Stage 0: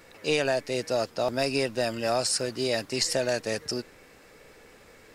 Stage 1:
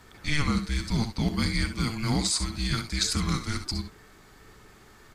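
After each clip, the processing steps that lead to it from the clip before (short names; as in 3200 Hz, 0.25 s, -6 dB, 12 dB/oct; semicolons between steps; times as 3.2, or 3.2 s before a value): frequency shift -450 Hz; early reflections 64 ms -11 dB, 74 ms -14.5 dB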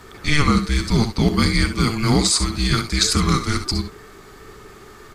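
small resonant body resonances 400/1200 Hz, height 8 dB, ringing for 30 ms; gain +8.5 dB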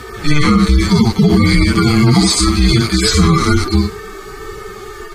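median-filter separation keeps harmonic; maximiser +15.5 dB; gain -1 dB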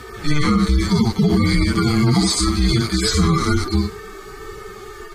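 dynamic EQ 2600 Hz, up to -6 dB, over -39 dBFS, Q 4.6; gain -5.5 dB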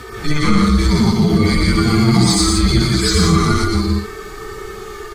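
in parallel at -5 dB: soft clip -18 dBFS, distortion -10 dB; on the sum: loudspeakers at several distances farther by 41 m -4 dB, 58 m -6 dB; gain -1 dB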